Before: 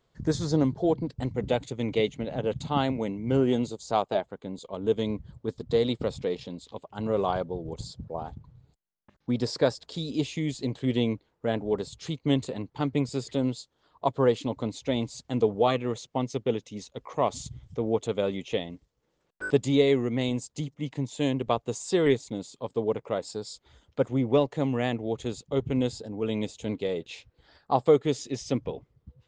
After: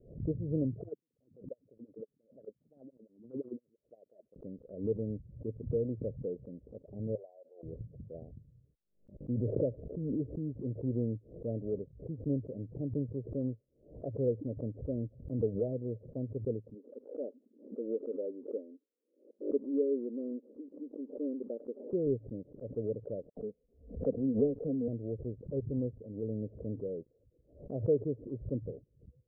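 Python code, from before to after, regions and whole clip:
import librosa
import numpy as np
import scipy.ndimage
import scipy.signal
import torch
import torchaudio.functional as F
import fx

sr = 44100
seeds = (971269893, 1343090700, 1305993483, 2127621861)

y = fx.chain(x, sr, fx.wah_lfo(hz=5.8, low_hz=230.0, high_hz=2100.0, q=3.3),
    fx.upward_expand(threshold_db=-44.0, expansion=2.5), at=(0.83, 4.36))
y = fx.chain(y, sr, fx.highpass(hz=850.0, slope=24),
    fx.band_squash(depth_pct=100), at=(7.15, 7.63))
y = fx.chain(y, sr, fx.lowpass(hz=3800.0, slope=24),
    fx.pre_swell(db_per_s=29.0), at=(9.32, 10.49))
y = fx.chain(y, sr, fx.brickwall_highpass(low_hz=220.0),
    fx.notch_comb(f0_hz=680.0), at=(16.74, 21.93))
y = fx.chain(y, sr, fx.comb(ms=4.3, depth=0.75),
    fx.dispersion(late='lows', ms=78.0, hz=2100.0),
    fx.pre_swell(db_per_s=140.0), at=(23.29, 24.88))
y = scipy.signal.sosfilt(scipy.signal.butter(12, 600.0, 'lowpass', fs=sr, output='sos'), y)
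y = fx.dynamic_eq(y, sr, hz=110.0, q=3.9, threshold_db=-48.0, ratio=4.0, max_db=7)
y = fx.pre_swell(y, sr, db_per_s=120.0)
y = F.gain(torch.from_numpy(y), -8.5).numpy()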